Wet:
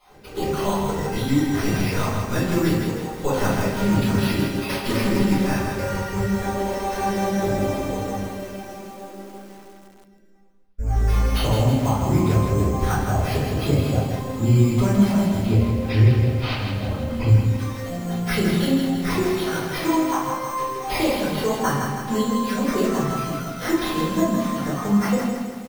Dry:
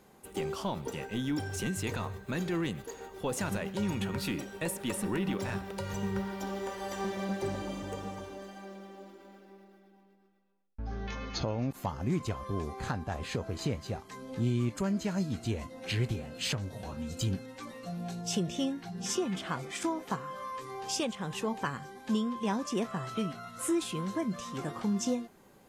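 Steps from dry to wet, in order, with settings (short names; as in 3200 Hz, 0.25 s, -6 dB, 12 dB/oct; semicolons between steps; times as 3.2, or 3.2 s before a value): random spectral dropouts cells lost 23%; sample-and-hold 6×; 15.45–17.28 air absorption 160 m; echo 74 ms -18 dB; shoebox room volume 69 m³, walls mixed, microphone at 3.4 m; lo-fi delay 0.161 s, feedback 55%, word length 7-bit, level -5 dB; gain -2.5 dB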